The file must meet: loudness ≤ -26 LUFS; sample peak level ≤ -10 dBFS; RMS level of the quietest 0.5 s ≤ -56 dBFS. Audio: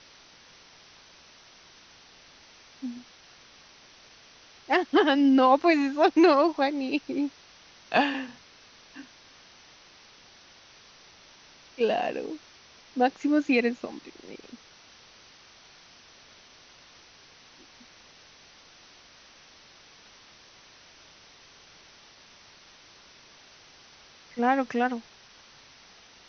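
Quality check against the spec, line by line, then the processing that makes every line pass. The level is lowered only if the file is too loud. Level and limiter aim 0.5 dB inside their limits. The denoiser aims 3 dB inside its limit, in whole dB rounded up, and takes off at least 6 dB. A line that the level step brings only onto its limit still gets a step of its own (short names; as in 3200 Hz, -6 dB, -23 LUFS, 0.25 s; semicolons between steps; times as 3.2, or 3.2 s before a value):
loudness -25.0 LUFS: fail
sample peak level -8.5 dBFS: fail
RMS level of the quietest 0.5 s -54 dBFS: fail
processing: denoiser 6 dB, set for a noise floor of -54 dBFS; gain -1.5 dB; limiter -10.5 dBFS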